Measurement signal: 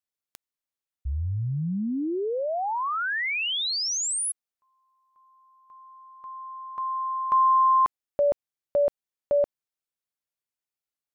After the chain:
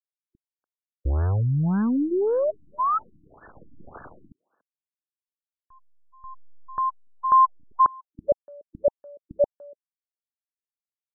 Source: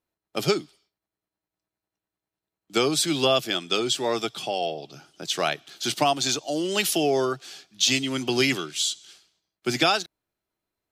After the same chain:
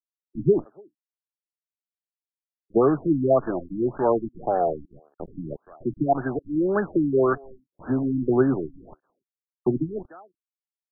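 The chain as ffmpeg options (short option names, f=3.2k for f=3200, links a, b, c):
-filter_complex "[0:a]anlmdn=0.398,highshelf=f=4.9k:g=7.5,acrusher=bits=6:dc=4:mix=0:aa=0.000001,asplit=2[a][b];[b]adelay=290,highpass=300,lowpass=3.4k,asoftclip=type=hard:threshold=-13dB,volume=-27dB[c];[a][c]amix=inputs=2:normalize=0,afftfilt=real='re*lt(b*sr/1024,310*pow(1800/310,0.5+0.5*sin(2*PI*1.8*pts/sr)))':imag='im*lt(b*sr/1024,310*pow(1800/310,0.5+0.5*sin(2*PI*1.8*pts/sr)))':win_size=1024:overlap=0.75,volume=5dB"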